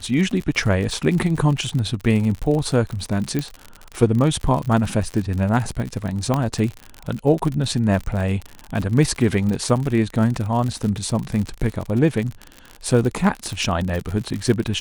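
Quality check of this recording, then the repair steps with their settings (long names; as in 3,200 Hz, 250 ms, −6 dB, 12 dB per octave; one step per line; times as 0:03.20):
surface crackle 60 per second −24 dBFS
0:03.39: click −10 dBFS
0:06.34: click −8 dBFS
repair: click removal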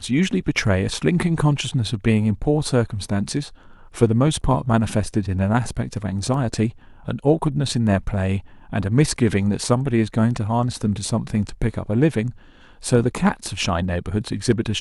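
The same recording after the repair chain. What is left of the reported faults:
0:06.34: click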